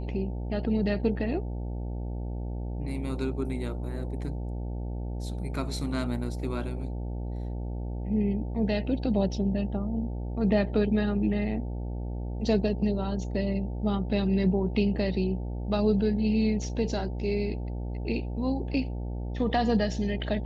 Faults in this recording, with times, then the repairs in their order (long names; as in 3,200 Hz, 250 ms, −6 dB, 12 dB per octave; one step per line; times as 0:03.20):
mains buzz 60 Hz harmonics 15 −33 dBFS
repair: hum removal 60 Hz, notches 15